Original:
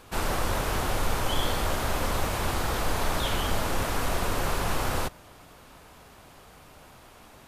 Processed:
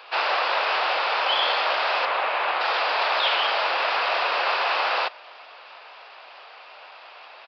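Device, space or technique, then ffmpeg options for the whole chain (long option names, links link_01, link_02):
musical greeting card: -filter_complex "[0:a]asettb=1/sr,asplit=3[link_01][link_02][link_03];[link_01]atrim=end=2.054[link_04];[link_02]atrim=start=2.05:end=2.61,asetpts=PTS-STARTPTS,afade=type=in:duration=0.004:curve=qsin,afade=type=out:start_time=0.556:duration=0.004:curve=qsin,lowpass=2800[link_05];[link_03]atrim=start=2.606[link_06];[link_04][link_05]acrossfade=duration=0.004:curve1=hsin:curve2=qsin[link_07];[link_07][link_06]acrossfade=duration=0.004:curve1=qsin:curve2=hsin,aresample=11025,aresample=44100,highpass=frequency=590:width=0.5412,highpass=frequency=590:width=1.3066,equalizer=frequency=2600:width_type=o:width=0.27:gain=6.5,volume=8.5dB"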